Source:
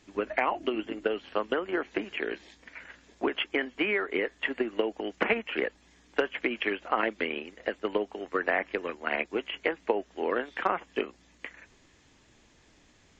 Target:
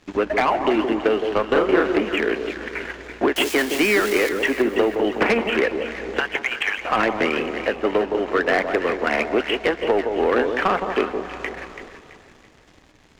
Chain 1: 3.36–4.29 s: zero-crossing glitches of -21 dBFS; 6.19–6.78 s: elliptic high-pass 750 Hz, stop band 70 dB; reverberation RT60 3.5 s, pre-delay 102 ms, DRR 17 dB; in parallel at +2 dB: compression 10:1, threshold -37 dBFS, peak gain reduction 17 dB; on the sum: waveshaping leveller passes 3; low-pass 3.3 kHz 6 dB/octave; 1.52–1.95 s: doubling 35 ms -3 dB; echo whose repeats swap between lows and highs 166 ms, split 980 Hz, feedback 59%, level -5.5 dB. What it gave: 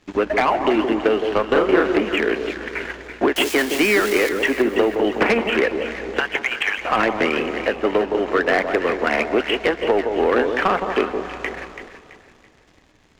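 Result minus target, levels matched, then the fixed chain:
compression: peak gain reduction -7 dB
3.36–4.29 s: zero-crossing glitches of -21 dBFS; 6.19–6.78 s: elliptic high-pass 750 Hz, stop band 70 dB; reverberation RT60 3.5 s, pre-delay 102 ms, DRR 17 dB; in parallel at +2 dB: compression 10:1, threshold -45 dBFS, peak gain reduction 24.5 dB; on the sum: waveshaping leveller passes 3; low-pass 3.3 kHz 6 dB/octave; 1.52–1.95 s: doubling 35 ms -3 dB; echo whose repeats swap between lows and highs 166 ms, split 980 Hz, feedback 59%, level -5.5 dB

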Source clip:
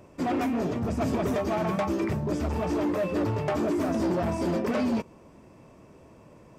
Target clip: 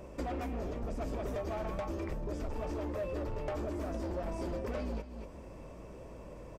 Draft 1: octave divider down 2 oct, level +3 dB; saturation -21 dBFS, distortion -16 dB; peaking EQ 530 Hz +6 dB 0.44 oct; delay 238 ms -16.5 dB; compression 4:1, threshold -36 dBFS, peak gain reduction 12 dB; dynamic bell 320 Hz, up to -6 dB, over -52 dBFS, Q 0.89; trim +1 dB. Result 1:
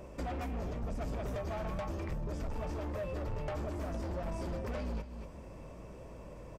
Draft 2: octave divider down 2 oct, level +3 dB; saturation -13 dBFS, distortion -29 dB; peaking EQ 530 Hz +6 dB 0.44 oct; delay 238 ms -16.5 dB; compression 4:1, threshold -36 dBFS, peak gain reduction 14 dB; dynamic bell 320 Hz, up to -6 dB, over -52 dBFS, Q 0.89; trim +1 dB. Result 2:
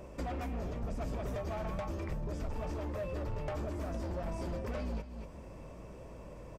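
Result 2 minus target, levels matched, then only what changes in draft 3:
125 Hz band +3.0 dB
change: dynamic bell 150 Hz, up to -6 dB, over -52 dBFS, Q 0.89

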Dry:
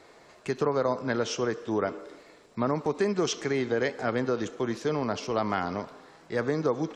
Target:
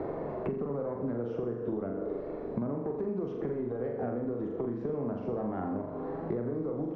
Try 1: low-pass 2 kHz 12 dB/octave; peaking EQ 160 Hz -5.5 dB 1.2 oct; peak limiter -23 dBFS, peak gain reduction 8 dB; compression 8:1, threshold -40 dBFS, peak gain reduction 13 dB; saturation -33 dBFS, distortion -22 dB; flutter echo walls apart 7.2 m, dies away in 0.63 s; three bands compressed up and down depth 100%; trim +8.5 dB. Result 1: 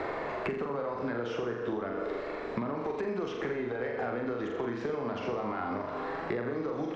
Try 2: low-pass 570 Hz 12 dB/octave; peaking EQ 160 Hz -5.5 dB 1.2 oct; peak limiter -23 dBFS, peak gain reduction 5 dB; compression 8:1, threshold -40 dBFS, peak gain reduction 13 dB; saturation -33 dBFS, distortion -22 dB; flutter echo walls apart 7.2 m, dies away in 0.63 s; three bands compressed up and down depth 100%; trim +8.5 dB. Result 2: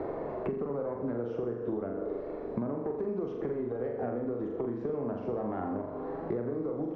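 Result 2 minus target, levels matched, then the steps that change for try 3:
125 Hz band -2.5 dB
remove: peaking EQ 160 Hz -5.5 dB 1.2 oct

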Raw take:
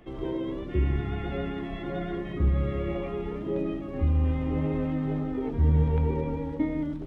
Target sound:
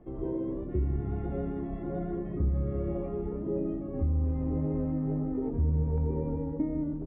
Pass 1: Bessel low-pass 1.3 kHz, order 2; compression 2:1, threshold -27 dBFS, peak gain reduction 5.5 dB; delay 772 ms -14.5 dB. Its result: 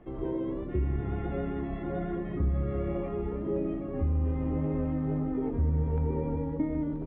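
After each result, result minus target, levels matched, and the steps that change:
echo-to-direct +8.5 dB; 1 kHz band +4.0 dB
change: delay 772 ms -23 dB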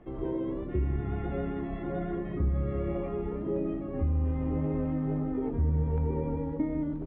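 1 kHz band +4.0 dB
change: Bessel low-pass 630 Hz, order 2

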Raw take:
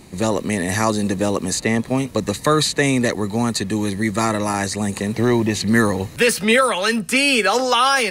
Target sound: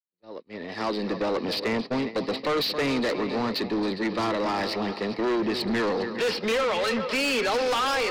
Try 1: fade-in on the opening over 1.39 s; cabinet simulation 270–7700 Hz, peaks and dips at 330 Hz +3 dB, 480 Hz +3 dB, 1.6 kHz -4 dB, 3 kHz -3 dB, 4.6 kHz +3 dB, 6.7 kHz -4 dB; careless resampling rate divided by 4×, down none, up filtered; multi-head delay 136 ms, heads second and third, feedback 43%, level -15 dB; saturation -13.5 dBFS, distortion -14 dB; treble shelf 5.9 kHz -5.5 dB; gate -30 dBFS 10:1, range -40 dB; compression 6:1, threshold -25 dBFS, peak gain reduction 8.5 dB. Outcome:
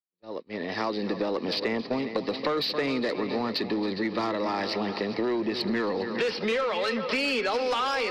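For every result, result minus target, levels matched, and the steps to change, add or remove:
compression: peak gain reduction +8.5 dB; saturation: distortion -7 dB
remove: compression 6:1, threshold -25 dBFS, peak gain reduction 8.5 dB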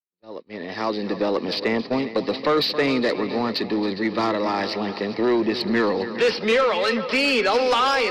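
saturation: distortion -7 dB
change: saturation -22 dBFS, distortion -7 dB

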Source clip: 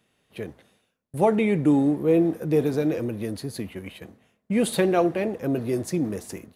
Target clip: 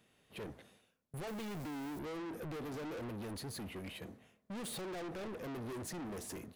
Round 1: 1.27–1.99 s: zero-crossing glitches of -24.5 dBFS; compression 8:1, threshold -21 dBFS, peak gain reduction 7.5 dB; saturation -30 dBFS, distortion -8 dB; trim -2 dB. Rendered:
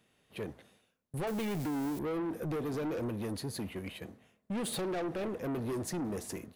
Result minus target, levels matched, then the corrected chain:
saturation: distortion -4 dB
1.27–1.99 s: zero-crossing glitches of -24.5 dBFS; compression 8:1, threshold -21 dBFS, peak gain reduction 7.5 dB; saturation -39.5 dBFS, distortion -3 dB; trim -2 dB

